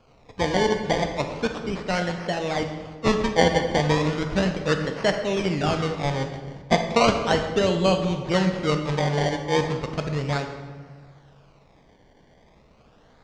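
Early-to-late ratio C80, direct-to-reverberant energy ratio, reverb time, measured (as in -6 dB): 8.5 dB, 5.0 dB, 1.5 s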